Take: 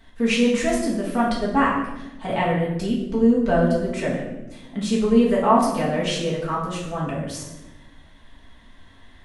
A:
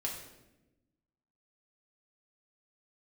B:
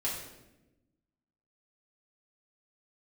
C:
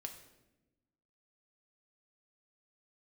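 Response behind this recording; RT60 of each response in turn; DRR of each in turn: B; 1.0, 1.0, 1.0 seconds; −2.5, −6.5, 4.0 decibels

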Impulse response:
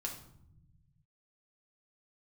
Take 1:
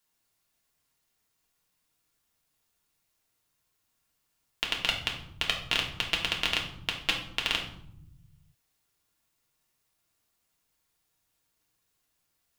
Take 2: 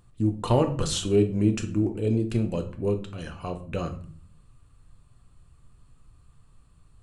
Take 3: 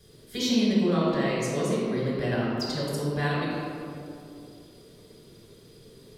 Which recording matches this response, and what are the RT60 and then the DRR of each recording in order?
1; 0.75, 0.45, 2.6 seconds; −1.0, 5.0, −6.0 decibels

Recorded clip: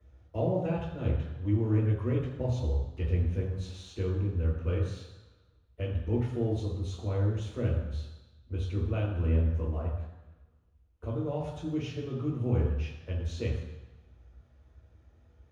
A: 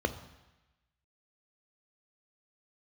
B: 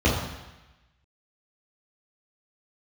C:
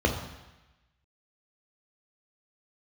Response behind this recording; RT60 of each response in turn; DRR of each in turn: B; 1.0, 1.0, 1.0 seconds; 9.0, −8.0, 1.5 decibels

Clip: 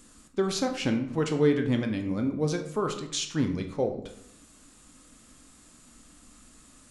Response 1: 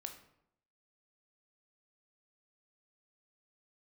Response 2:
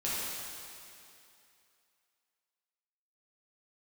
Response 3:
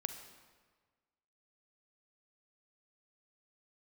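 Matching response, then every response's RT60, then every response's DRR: 1; 0.75, 2.6, 1.5 seconds; 5.0, −9.5, 7.5 decibels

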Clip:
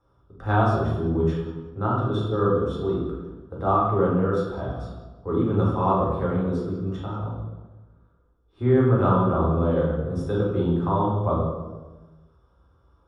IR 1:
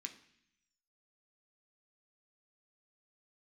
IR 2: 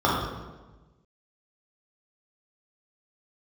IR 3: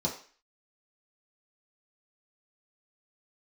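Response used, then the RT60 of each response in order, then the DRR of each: 2; 0.65, 1.2, 0.40 seconds; 3.5, −6.5, −4.0 decibels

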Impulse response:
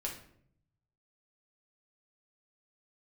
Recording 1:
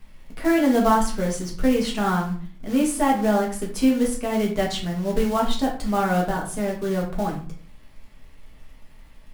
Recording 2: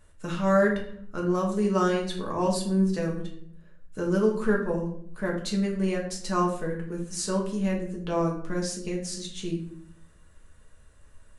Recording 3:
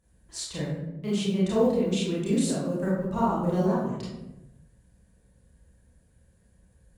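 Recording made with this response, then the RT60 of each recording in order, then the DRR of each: 2; 0.45, 0.65, 1.0 seconds; −2.5, −2.0, −8.0 decibels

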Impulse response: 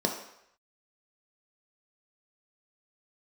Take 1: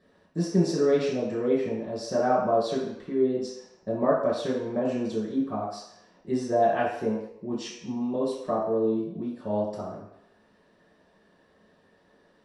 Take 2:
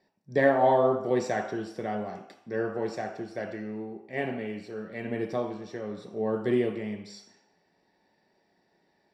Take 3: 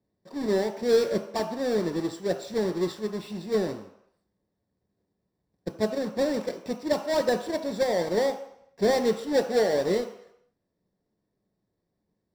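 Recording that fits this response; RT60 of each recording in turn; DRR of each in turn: 2; 0.75, 0.75, 0.75 seconds; −7.5, 1.5, 6.0 decibels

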